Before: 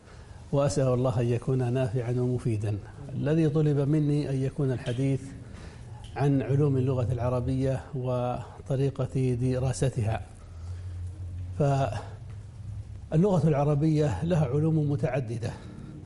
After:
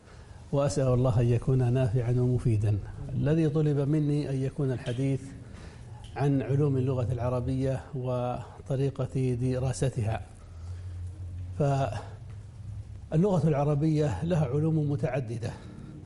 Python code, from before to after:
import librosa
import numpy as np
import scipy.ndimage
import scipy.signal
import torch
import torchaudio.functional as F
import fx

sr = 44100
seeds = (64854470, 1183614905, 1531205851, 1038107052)

y = fx.low_shelf(x, sr, hz=100.0, db=11.0, at=(0.88, 3.34))
y = F.gain(torch.from_numpy(y), -1.5).numpy()